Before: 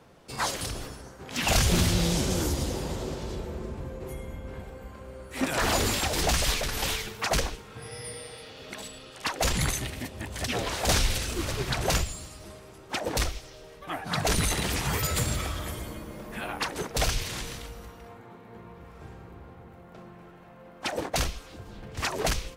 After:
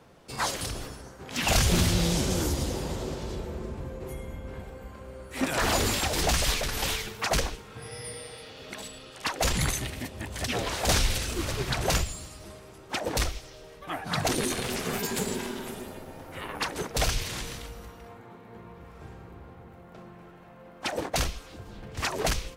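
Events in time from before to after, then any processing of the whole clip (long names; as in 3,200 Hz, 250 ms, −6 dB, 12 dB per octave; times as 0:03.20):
0:14.28–0:16.55: ring modulation 310 Hz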